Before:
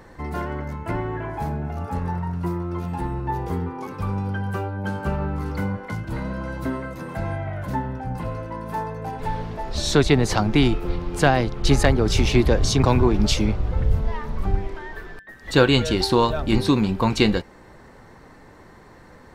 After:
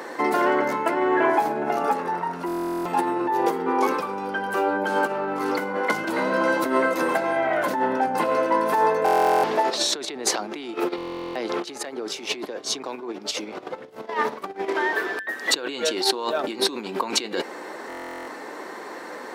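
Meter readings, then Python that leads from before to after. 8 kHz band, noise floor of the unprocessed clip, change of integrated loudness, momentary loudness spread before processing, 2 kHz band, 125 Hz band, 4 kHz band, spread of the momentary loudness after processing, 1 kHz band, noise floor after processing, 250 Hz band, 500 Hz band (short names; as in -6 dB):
+2.5 dB, -47 dBFS, -1.0 dB, 12 LU, +3.0 dB, -22.0 dB, 0.0 dB, 14 LU, +5.5 dB, -38 dBFS, -5.0 dB, +1.0 dB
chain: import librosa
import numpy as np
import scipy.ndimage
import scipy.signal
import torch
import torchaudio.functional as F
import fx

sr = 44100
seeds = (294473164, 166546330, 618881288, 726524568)

y = fx.over_compress(x, sr, threshold_db=-29.0, ratio=-1.0)
y = scipy.signal.sosfilt(scipy.signal.butter(4, 300.0, 'highpass', fs=sr, output='sos'), y)
y = fx.buffer_glitch(y, sr, at_s=(2.46, 9.04, 10.96, 17.88), block=1024, repeats=16)
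y = y * librosa.db_to_amplitude(8.0)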